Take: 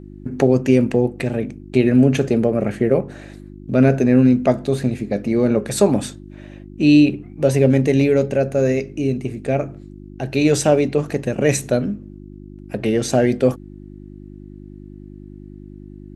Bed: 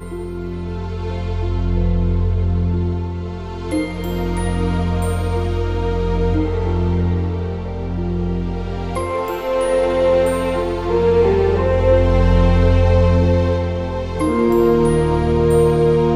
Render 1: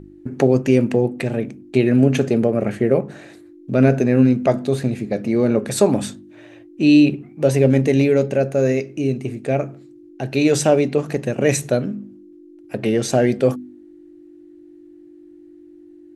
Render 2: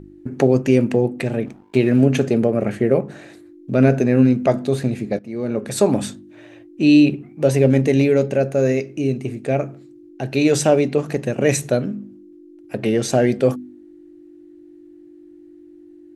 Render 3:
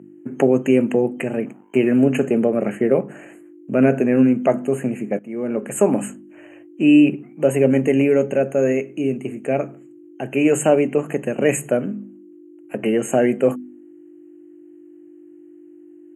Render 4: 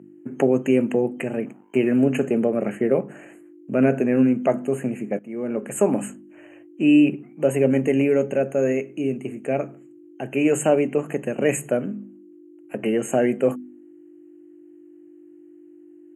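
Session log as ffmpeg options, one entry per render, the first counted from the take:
ffmpeg -i in.wav -af "bandreject=frequency=50:width_type=h:width=4,bandreject=frequency=100:width_type=h:width=4,bandreject=frequency=150:width_type=h:width=4,bandreject=frequency=200:width_type=h:width=4,bandreject=frequency=250:width_type=h:width=4" out.wav
ffmpeg -i in.wav -filter_complex "[0:a]asettb=1/sr,asplit=3[link_01][link_02][link_03];[link_01]atrim=end=1.464[link_04];[link_02]atrim=start=1.46:end=2.05,asetpts=PTS-STARTPTS,afade=type=in:duration=0.004:curve=qsin,afade=type=out:start_time=0.586:duration=0.004:curve=qsin,aeval=exprs='sgn(val(0))*max(abs(val(0))-0.00631,0)':channel_layout=same[link_05];[link_03]atrim=start=2.046[link_06];[link_04][link_05]acrossfade=duration=0.004:curve1=hsin:curve2=qsin[link_07];[link_07][link_06]acrossfade=duration=0.004:curve1=qsin:curve2=hsin,asplit=2[link_08][link_09];[link_08]atrim=end=5.19,asetpts=PTS-STARTPTS,afade=type=out:start_time=5.186:duration=0.004:curve=hsin:silence=0.149624[link_10];[link_09]atrim=start=5.19,asetpts=PTS-STARTPTS,afade=type=in:duration=0.74:silence=0.149624[link_11];[link_10][link_11]concat=n=2:v=0:a=1" out.wav
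ffmpeg -i in.wav -af "highpass=frequency=160:width=0.5412,highpass=frequency=160:width=1.3066,afftfilt=real='re*(1-between(b*sr/4096,3100,6400))':imag='im*(1-between(b*sr/4096,3100,6400))':win_size=4096:overlap=0.75" out.wav
ffmpeg -i in.wav -af "volume=-3dB" out.wav

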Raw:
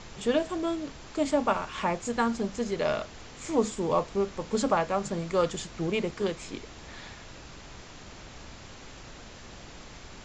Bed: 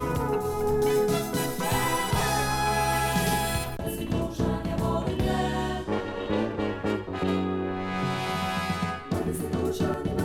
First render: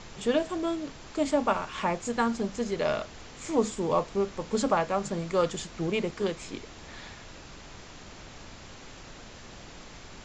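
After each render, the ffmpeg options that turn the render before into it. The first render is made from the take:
ffmpeg -i in.wav -af "bandreject=frequency=60:width_type=h:width=4,bandreject=frequency=120:width_type=h:width=4" out.wav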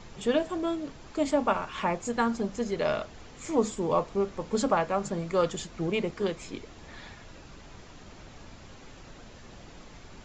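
ffmpeg -i in.wav -af "afftdn=noise_reduction=6:noise_floor=-47" out.wav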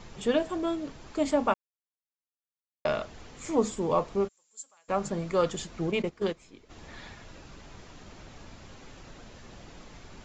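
ffmpeg -i in.wav -filter_complex "[0:a]asplit=3[link_01][link_02][link_03];[link_01]afade=type=out:start_time=4.27:duration=0.02[link_04];[link_02]bandpass=frequency=7500:width_type=q:width=9,afade=type=in:start_time=4.27:duration=0.02,afade=type=out:start_time=4.88:duration=0.02[link_05];[link_03]afade=type=in:start_time=4.88:duration=0.02[link_06];[link_04][link_05][link_06]amix=inputs=3:normalize=0,asplit=3[link_07][link_08][link_09];[link_07]afade=type=out:start_time=5.84:duration=0.02[link_10];[link_08]agate=range=-13dB:threshold=-32dB:ratio=16:release=100:detection=peak,afade=type=in:start_time=5.84:duration=0.02,afade=type=out:start_time=6.69:duration=0.02[link_11];[link_09]afade=type=in:start_time=6.69:duration=0.02[link_12];[link_10][link_11][link_12]amix=inputs=3:normalize=0,asplit=3[link_13][link_14][link_15];[link_13]atrim=end=1.54,asetpts=PTS-STARTPTS,afade=type=out:start_time=1.536:duration=0.004:curve=hsin[link_16];[link_14]atrim=start=1.54:end=2.85,asetpts=PTS-STARTPTS,volume=0[link_17];[link_15]atrim=start=2.85,asetpts=PTS-STARTPTS,afade=type=in:duration=0.004:curve=hsin[link_18];[link_16][link_17][link_18]concat=n=3:v=0:a=1" out.wav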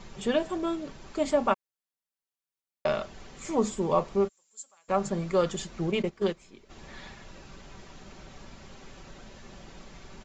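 ffmpeg -i in.wav -af "aecho=1:1:5.2:0.34" out.wav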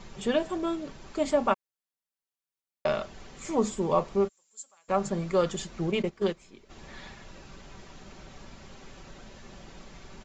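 ffmpeg -i in.wav -af anull out.wav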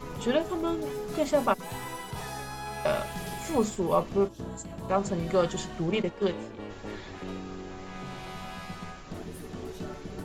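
ffmpeg -i in.wav -i bed.wav -filter_complex "[1:a]volume=-12dB[link_01];[0:a][link_01]amix=inputs=2:normalize=0" out.wav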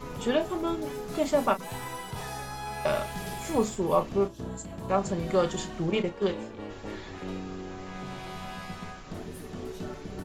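ffmpeg -i in.wav -filter_complex "[0:a]asplit=2[link_01][link_02];[link_02]adelay=32,volume=-11.5dB[link_03];[link_01][link_03]amix=inputs=2:normalize=0" out.wav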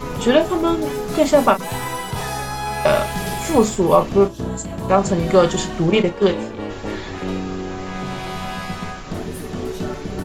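ffmpeg -i in.wav -af "volume=11.5dB,alimiter=limit=-2dB:level=0:latency=1" out.wav

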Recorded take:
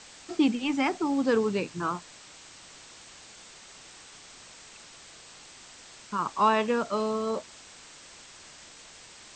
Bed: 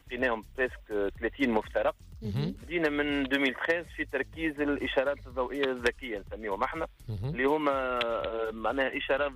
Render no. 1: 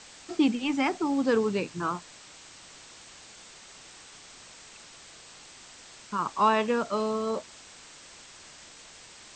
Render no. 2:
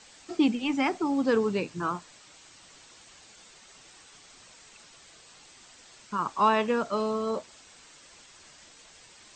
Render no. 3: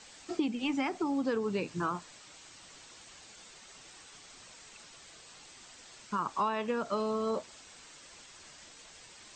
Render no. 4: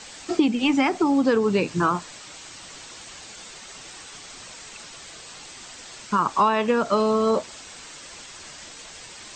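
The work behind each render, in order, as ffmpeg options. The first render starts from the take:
ffmpeg -i in.wav -af anull out.wav
ffmpeg -i in.wav -af "afftdn=noise_reduction=6:noise_floor=-50" out.wav
ffmpeg -i in.wav -af "acompressor=threshold=-28dB:ratio=6" out.wav
ffmpeg -i in.wav -af "volume=11.5dB" out.wav

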